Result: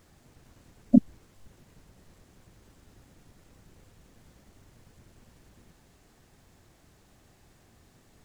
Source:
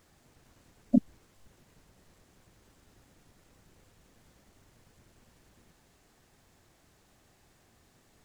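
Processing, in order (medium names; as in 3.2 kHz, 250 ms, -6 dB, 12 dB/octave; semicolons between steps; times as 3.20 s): bass shelf 330 Hz +5 dB; trim +2 dB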